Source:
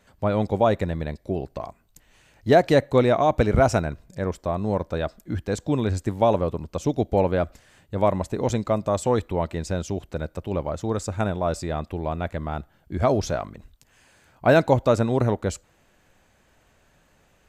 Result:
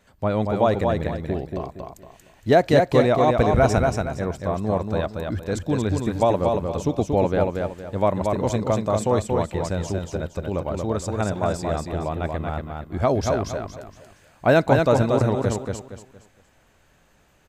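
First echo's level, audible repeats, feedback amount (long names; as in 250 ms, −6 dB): −4.0 dB, 4, 32%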